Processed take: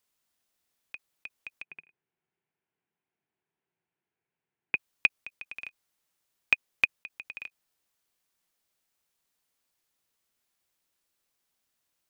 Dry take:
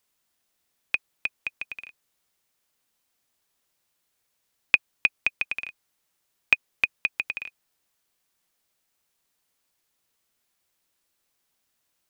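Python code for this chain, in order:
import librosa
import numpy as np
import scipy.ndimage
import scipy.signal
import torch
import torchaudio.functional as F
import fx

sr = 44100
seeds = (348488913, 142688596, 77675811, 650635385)

y = fx.level_steps(x, sr, step_db=20)
y = fx.cabinet(y, sr, low_hz=100.0, low_slope=12, high_hz=2300.0, hz=(160.0, 260.0, 380.0, 560.0, 1200.0, 1900.0), db=(7, -3, 7, -9, -9, -4), at=(1.62, 4.75))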